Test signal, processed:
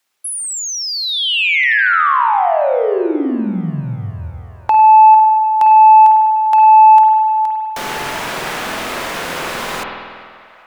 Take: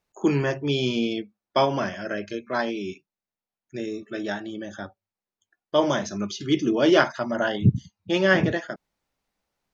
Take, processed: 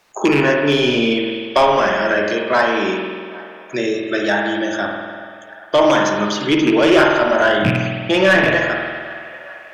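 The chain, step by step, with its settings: rattle on loud lows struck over -24 dBFS, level -18 dBFS; overdrive pedal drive 19 dB, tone 6 kHz, clips at -3 dBFS; on a send: feedback echo behind a band-pass 396 ms, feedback 51%, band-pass 1.2 kHz, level -21.5 dB; on the sum: spring tank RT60 1.3 s, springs 48 ms, chirp 55 ms, DRR 1 dB; dynamic bell 4.6 kHz, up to -4 dB, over -28 dBFS, Q 0.88; three bands compressed up and down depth 40%

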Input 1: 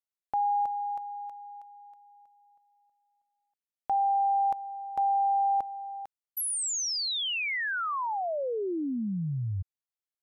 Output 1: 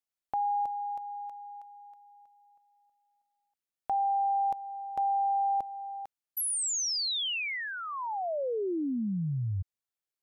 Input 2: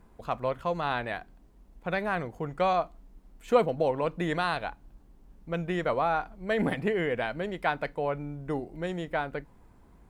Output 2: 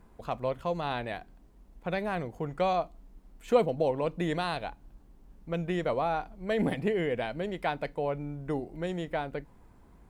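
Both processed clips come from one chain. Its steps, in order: dynamic bell 1.4 kHz, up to -7 dB, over -43 dBFS, Q 1.2

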